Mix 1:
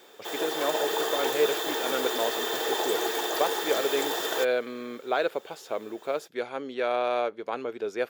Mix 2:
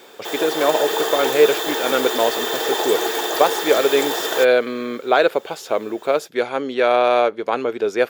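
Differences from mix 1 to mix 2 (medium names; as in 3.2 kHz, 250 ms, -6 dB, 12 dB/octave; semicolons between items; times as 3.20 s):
speech +11.0 dB; background +6.5 dB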